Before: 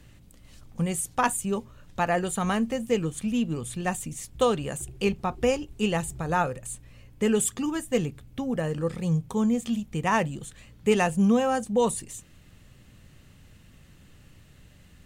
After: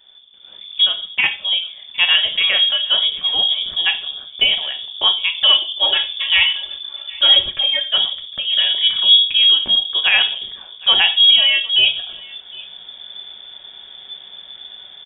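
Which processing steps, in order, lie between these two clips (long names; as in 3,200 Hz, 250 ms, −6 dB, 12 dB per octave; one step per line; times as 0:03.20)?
0:05.35–0:07.84: comb filter 3.8 ms, depth 81%
automatic gain control gain up to 13 dB
single-tap delay 760 ms −23.5 dB
rectangular room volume 490 cubic metres, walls furnished, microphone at 0.98 metres
voice inversion scrambler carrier 3,500 Hz
level −2 dB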